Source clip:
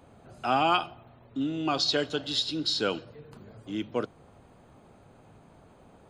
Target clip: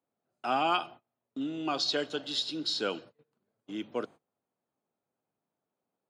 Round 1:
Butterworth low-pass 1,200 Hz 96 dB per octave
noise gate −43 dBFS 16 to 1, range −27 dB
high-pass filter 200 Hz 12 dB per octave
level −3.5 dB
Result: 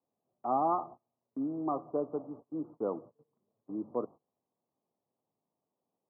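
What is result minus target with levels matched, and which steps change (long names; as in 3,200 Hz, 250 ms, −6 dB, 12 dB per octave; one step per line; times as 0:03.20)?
1,000 Hz band +3.0 dB
remove: Butterworth low-pass 1,200 Hz 96 dB per octave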